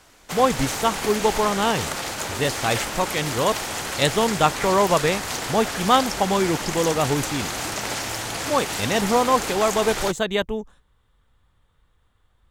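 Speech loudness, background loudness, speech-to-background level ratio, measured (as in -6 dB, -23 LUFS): -23.0 LUFS, -27.0 LUFS, 4.0 dB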